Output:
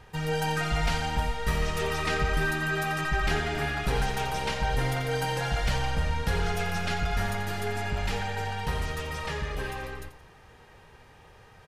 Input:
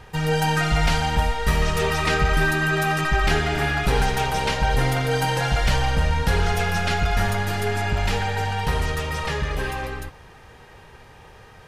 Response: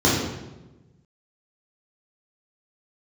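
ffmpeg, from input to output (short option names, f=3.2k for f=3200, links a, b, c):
-af "aecho=1:1:86|172|258|344:0.237|0.083|0.029|0.0102,volume=-7dB"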